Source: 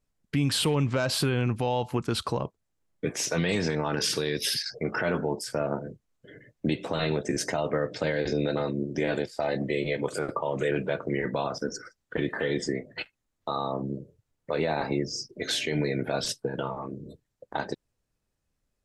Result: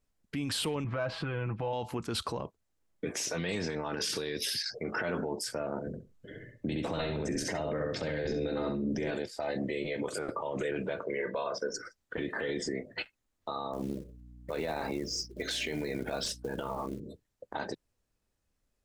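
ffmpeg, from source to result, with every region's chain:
ffmpeg -i in.wav -filter_complex "[0:a]asettb=1/sr,asplit=3[link_01][link_02][link_03];[link_01]atrim=end=0.844[link_04];[link_02]atrim=start=0.84:end=1.73,asetpts=PTS-STARTPTS,afade=type=in:duration=0.004:curve=qsin,afade=type=out:start_time=0.886:duration=0.004:curve=qsin,lowpass=1800,equalizer=frequency=360:width=0.95:gain=-5.5,aecho=1:1:6.1:0.58,atrim=end_sample=39249[link_05];[link_03]atrim=start=1.726[link_06];[link_04][link_05]acrossfade=duration=0.004:curve1=hsin:curve2=qsin[link_07];[link_07][link_06]acrossfade=duration=0.004:curve1=qsin:curve2=hsin,asettb=1/sr,asplit=3[link_08][link_09][link_10];[link_08]atrim=end=5.874[link_11];[link_09]atrim=start=5.87:end=9.11,asetpts=PTS-STARTPTS,afade=type=in:duration=0.004:curve=qsin,afade=type=out:start_time=3.236:duration=0.004:curve=qsin,lowshelf=frequency=220:gain=8.5,asplit=2[link_12][link_13];[link_13]adelay=66,lowpass=frequency=4600:poles=1,volume=-4dB,asplit=2[link_14][link_15];[link_15]adelay=66,lowpass=frequency=4600:poles=1,volume=0.19,asplit=2[link_16][link_17];[link_17]adelay=66,lowpass=frequency=4600:poles=1,volume=0.19[link_18];[link_12][link_14][link_16][link_18]amix=inputs=4:normalize=0,atrim=end_sample=142884[link_19];[link_10]atrim=start=9.106[link_20];[link_11][link_19]acrossfade=duration=0.004:curve1=hsin:curve2=qsin[link_21];[link_21][link_20]acrossfade=duration=0.004:curve1=qsin:curve2=hsin,asettb=1/sr,asplit=3[link_22][link_23][link_24];[link_22]atrim=end=11.034[link_25];[link_23]atrim=start=11.03:end=11.74,asetpts=PTS-STARTPTS,afade=type=in:duration=0.004:curve=qsin,afade=type=out:start_time=0.706:duration=0.004:curve=qsin,acrossover=split=190 5300:gain=0.178 1 0.224[link_26][link_27][link_28];[link_26][link_27][link_28]amix=inputs=3:normalize=0,bandreject=frequency=50:width_type=h:width=6,bandreject=frequency=100:width_type=h:width=6,bandreject=frequency=150:width_type=h:width=6,bandreject=frequency=200:width_type=h:width=6,bandreject=frequency=250:width_type=h:width=6,bandreject=frequency=300:width_type=h:width=6,bandreject=frequency=350:width_type=h:width=6,aecho=1:1:1.9:0.59,atrim=end_sample=31311[link_29];[link_24]atrim=start=11.736[link_30];[link_25][link_29]acrossfade=duration=0.004:curve1=hsin:curve2=qsin[link_31];[link_31][link_30]acrossfade=duration=0.004:curve1=qsin:curve2=hsin,asettb=1/sr,asplit=3[link_32][link_33][link_34];[link_32]atrim=end=13.734[link_35];[link_33]atrim=start=13.73:end=17,asetpts=PTS-STARTPTS,afade=type=in:duration=0.004:curve=qsin,afade=type=out:start_time=3.266:duration=0.004:curve=qsin,acompressor=threshold=-29dB:ratio=3:attack=3.2:release=140:knee=1:detection=peak,acrusher=bits=6:mode=log:mix=0:aa=0.000001,aeval=exprs='val(0)+0.00355*(sin(2*PI*60*n/s)+sin(2*PI*2*60*n/s)/2+sin(2*PI*3*60*n/s)/3+sin(2*PI*4*60*n/s)/4+sin(2*PI*5*60*n/s)/5)':channel_layout=same[link_36];[link_34]atrim=start=16.996[link_37];[link_35][link_36]acrossfade=duration=0.004:curve1=hsin:curve2=qsin[link_38];[link_38][link_37]acrossfade=duration=0.004:curve1=qsin:curve2=hsin,alimiter=limit=-24dB:level=0:latency=1:release=37,equalizer=frequency=140:width=3.7:gain=-7" out.wav

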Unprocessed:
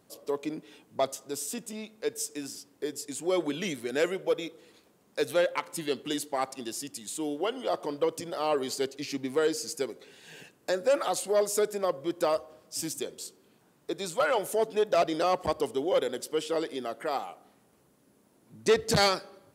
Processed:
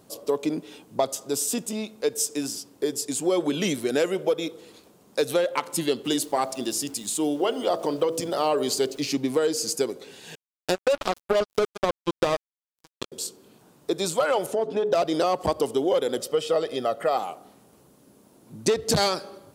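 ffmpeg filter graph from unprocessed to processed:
ffmpeg -i in.wav -filter_complex "[0:a]asettb=1/sr,asplit=3[link_01][link_02][link_03];[link_01]atrim=end=6.044[link_04];[link_02]atrim=start=6.04:end=9.09,asetpts=PTS-STARTPTS,afade=type=in:duration=0.004:curve=qsin,afade=type=out:start_time=3.046:duration=0.004:curve=qsin,bandreject=frequency=54.74:width_type=h:width=4,bandreject=frequency=109.48:width_type=h:width=4,bandreject=frequency=164.22:width_type=h:width=4,bandreject=frequency=218.96:width_type=h:width=4,bandreject=frequency=273.7:width_type=h:width=4,bandreject=frequency=328.44:width_type=h:width=4,bandreject=frequency=383.18:width_type=h:width=4,bandreject=frequency=437.92:width_type=h:width=4,bandreject=frequency=492.66:width_type=h:width=4,bandreject=frequency=547.4:width_type=h:width=4,bandreject=frequency=602.14:width_type=h:width=4,bandreject=frequency=656.88:width_type=h:width=4,aeval=exprs='val(0)*gte(abs(val(0)),0.00211)':channel_layout=same[link_05];[link_03]atrim=start=9.086[link_06];[link_04][link_05]acrossfade=duration=0.004:curve1=hsin:curve2=qsin[link_07];[link_07][link_06]acrossfade=duration=0.004:curve1=qsin:curve2=hsin,asettb=1/sr,asplit=3[link_08][link_09][link_10];[link_08]atrim=end=10.354[link_11];[link_09]atrim=start=10.35:end=13.12,asetpts=PTS-STARTPTS,afade=type=in:duration=0.004:curve=qsin,afade=type=out:start_time=2.766:duration=0.004:curve=qsin,highshelf=frequency=5100:gain=-9.5,acrusher=bits=3:mix=0:aa=0.5[link_12];[link_10]atrim=start=13.116[link_13];[link_11][link_12]acrossfade=duration=0.004:curve1=hsin:curve2=qsin[link_14];[link_14][link_13]acrossfade=duration=0.004:curve1=qsin:curve2=hsin,asettb=1/sr,asplit=3[link_15][link_16][link_17];[link_15]atrim=end=14.464[link_18];[link_16]atrim=start=14.46:end=14.93,asetpts=PTS-STARTPTS,afade=type=in:duration=0.004:curve=qsin,afade=type=out:start_time=0.466:duration=0.004:curve=qsin,aemphasis=mode=reproduction:type=75fm,bandreject=frequency=60:width_type=h:width=6,bandreject=frequency=120:width_type=h:width=6,bandreject=frequency=180:width_type=h:width=6,bandreject=frequency=240:width_type=h:width=6,bandreject=frequency=300:width_type=h:width=6,bandreject=frequency=360:width_type=h:width=6,bandreject=frequency=420:width_type=h:width=6,acompressor=threshold=-32dB:ratio=2:attack=3.2:release=140:knee=1:detection=peak[link_19];[link_17]atrim=start=14.926[link_20];[link_18][link_19]acrossfade=duration=0.004:curve1=hsin:curve2=qsin[link_21];[link_21][link_20]acrossfade=duration=0.004:curve1=qsin:curve2=hsin,asettb=1/sr,asplit=3[link_22][link_23][link_24];[link_22]atrim=end=16.174[link_25];[link_23]atrim=start=16.17:end=17.17,asetpts=PTS-STARTPTS,afade=type=in:duration=0.004:curve=qsin,afade=type=out:start_time=0.996:duration=0.004:curve=qsin,equalizer=frequency=10000:width_type=o:width=1.7:gain=-6.5,aecho=1:1:1.6:0.54,atrim=end_sample=44100[link_26];[link_24]atrim=start=17.166[link_27];[link_25][link_26]acrossfade=duration=0.004:curve1=hsin:curve2=qsin[link_28];[link_28][link_27]acrossfade=duration=0.004:curve1=qsin:curve2=hsin,equalizer=frequency=1900:width_type=o:width=0.87:gain=-5.5,acompressor=threshold=-28dB:ratio=6,volume=9dB" out.wav

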